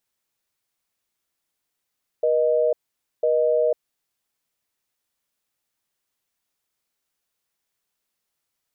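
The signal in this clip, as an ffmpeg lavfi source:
-f lavfi -i "aevalsrc='0.106*(sin(2*PI*480*t)+sin(2*PI*620*t))*clip(min(mod(t,1),0.5-mod(t,1))/0.005,0,1)':d=1.69:s=44100"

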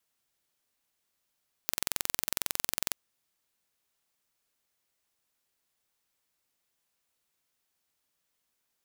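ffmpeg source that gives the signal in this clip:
-f lavfi -i "aevalsrc='0.841*eq(mod(n,2005),0)':d=1.26:s=44100"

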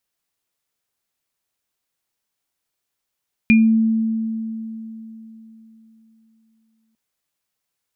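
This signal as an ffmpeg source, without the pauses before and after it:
-f lavfi -i "aevalsrc='0.376*pow(10,-3*t/3.67)*sin(2*PI*223*t)+0.266*pow(10,-3*t/0.25)*sin(2*PI*2410*t)':d=3.45:s=44100"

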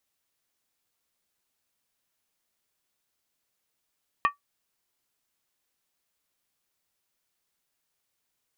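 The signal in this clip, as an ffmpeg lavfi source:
-f lavfi -i "aevalsrc='0.178*pow(10,-3*t/0.13)*sin(2*PI*1150*t)+0.0891*pow(10,-3*t/0.103)*sin(2*PI*1833.1*t)+0.0447*pow(10,-3*t/0.089)*sin(2*PI*2456.4*t)+0.0224*pow(10,-3*t/0.086)*sin(2*PI*2640.4*t)+0.0112*pow(10,-3*t/0.08)*sin(2*PI*3050.9*t)':d=0.63:s=44100"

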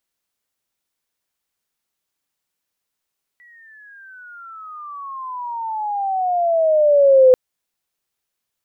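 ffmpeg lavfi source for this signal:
-f lavfi -i "aevalsrc='pow(10,(-6+39*(t/3.94-1))/20)*sin(2*PI*1960*3.94/(-23.5*log(2)/12)*(exp(-23.5*log(2)/12*t/3.94)-1))':d=3.94:s=44100"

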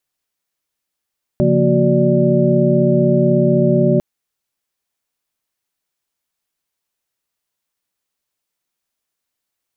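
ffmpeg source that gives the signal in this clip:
-f lavfi -i "aevalsrc='0.141*(sin(2*PI*138.59*t)+sin(2*PI*174.61*t)+sin(2*PI*233.08*t)+sin(2*PI*369.99*t)+sin(2*PI*587.33*t))':d=2.6:s=44100"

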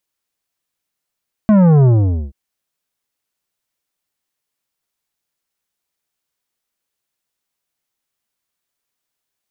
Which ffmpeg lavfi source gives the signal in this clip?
-f lavfi -i "aevalsrc='0.398*clip((0.83-t)/0.47,0,1)*tanh(3.55*sin(2*PI*220*0.83/log(65/220)*(exp(log(65/220)*t/0.83)-1)))/tanh(3.55)':d=0.83:s=44100"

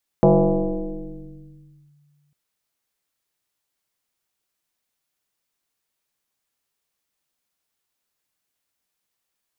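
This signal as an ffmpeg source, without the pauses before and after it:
-f lavfi -i "aevalsrc='0.355*pow(10,-3*t/2.3)*sin(2*PI*146*t+3.6*clip(1-t/1.71,0,1)*sin(2*PI*1.16*146*t))':d=2.1:s=44100"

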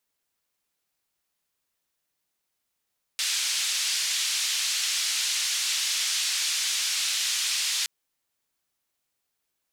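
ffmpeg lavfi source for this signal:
-f lavfi -i "anoisesrc=c=white:d=4.67:r=44100:seed=1,highpass=f=2800,lowpass=f=6100,volume=-14.2dB"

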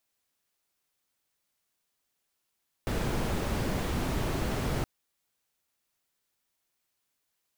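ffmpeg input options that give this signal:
-f lavfi -i "anoisesrc=c=brown:a=0.157:d=1.97:r=44100:seed=1"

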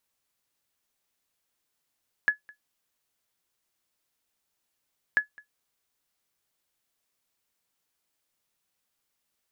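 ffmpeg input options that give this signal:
-f lavfi -i "aevalsrc='0.224*(sin(2*PI*1700*mod(t,2.89))*exp(-6.91*mod(t,2.89)/0.12)+0.0501*sin(2*PI*1700*max(mod(t,2.89)-0.21,0))*exp(-6.91*max(mod(t,2.89)-0.21,0)/0.12))':d=5.78:s=44100"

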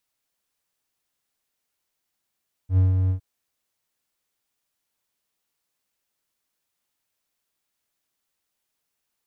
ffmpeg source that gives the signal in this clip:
-f lavfi -i "aevalsrc='0.266*(1-4*abs(mod(93.3*t+0.25,1)-0.5))':d=0.509:s=44100,afade=t=in:d=0.085,afade=t=out:st=0.085:d=0.153:silence=0.596,afade=t=out:st=0.41:d=0.099"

